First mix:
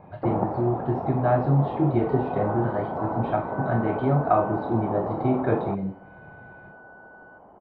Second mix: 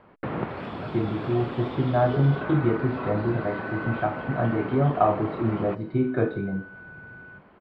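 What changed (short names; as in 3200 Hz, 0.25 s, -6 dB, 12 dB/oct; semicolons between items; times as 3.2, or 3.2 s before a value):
speech: entry +0.70 s; first sound: remove synth low-pass 790 Hz, resonance Q 3.4; second sound +5.0 dB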